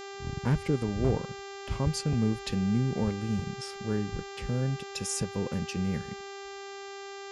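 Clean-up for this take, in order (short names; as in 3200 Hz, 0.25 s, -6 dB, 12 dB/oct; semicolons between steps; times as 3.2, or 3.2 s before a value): clip repair -18 dBFS; de-hum 395.8 Hz, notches 19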